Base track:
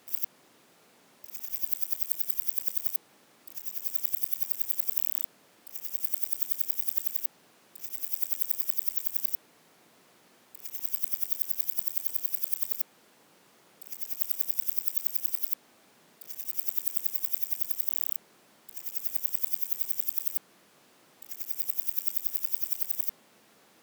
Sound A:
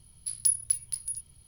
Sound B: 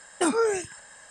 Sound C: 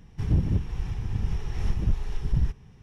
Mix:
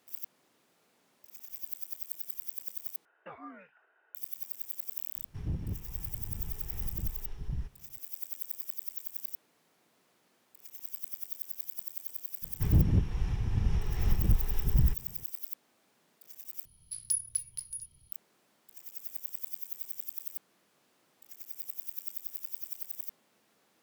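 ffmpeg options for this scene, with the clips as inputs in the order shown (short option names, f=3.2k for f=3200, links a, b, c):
-filter_complex "[3:a]asplit=2[a][b];[0:a]volume=-9.5dB[c];[2:a]highpass=f=570:t=q:w=0.5412,highpass=f=570:t=q:w=1.307,lowpass=f=2.8k:t=q:w=0.5176,lowpass=f=2.8k:t=q:w=0.7071,lowpass=f=2.8k:t=q:w=1.932,afreqshift=-180[d];[c]asplit=3[e][f][g];[e]atrim=end=3.054[h];[d]atrim=end=1.1,asetpts=PTS-STARTPTS,volume=-17.5dB[i];[f]atrim=start=4.146:end=16.654[j];[1:a]atrim=end=1.47,asetpts=PTS-STARTPTS,volume=-6dB[k];[g]atrim=start=18.116[l];[a]atrim=end=2.82,asetpts=PTS-STARTPTS,volume=-12dB,afade=t=in:d=0.004:c=hsin,afade=t=out:st=2.816:d=0.004:c=hsin,adelay=5160[m];[b]atrim=end=2.82,asetpts=PTS-STARTPTS,volume=-1dB,afade=t=in:d=0.004:c=hsin,afade=t=out:st=2.816:d=0.004:c=hsin,adelay=12420[n];[h][i]acrossfade=d=0.004:c1=hsin:c2=hsin[o];[o][j]acrossfade=d=0.004:c1=hsin:c2=hsin[p];[p][k]acrossfade=d=0.004:c1=hsin:c2=hsin[q];[q][l]acrossfade=d=0.004:c1=hsin:c2=hsin[r];[r][m][n]amix=inputs=3:normalize=0"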